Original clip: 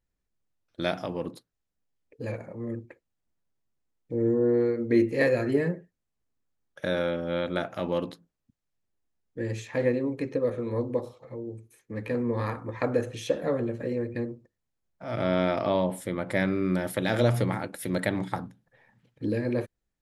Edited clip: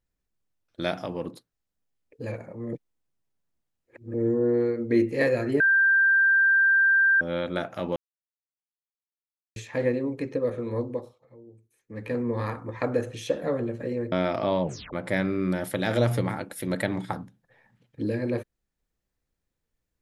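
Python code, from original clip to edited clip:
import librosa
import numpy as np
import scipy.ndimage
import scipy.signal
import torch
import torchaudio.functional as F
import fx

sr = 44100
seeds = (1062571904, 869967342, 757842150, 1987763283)

y = fx.edit(x, sr, fx.reverse_span(start_s=2.73, length_s=1.41),
    fx.bleep(start_s=5.6, length_s=1.61, hz=1580.0, db=-16.5),
    fx.silence(start_s=7.96, length_s=1.6),
    fx.fade_down_up(start_s=10.8, length_s=1.31, db=-12.5, fade_s=0.38),
    fx.cut(start_s=14.12, length_s=1.23),
    fx.tape_stop(start_s=15.86, length_s=0.3), tone=tone)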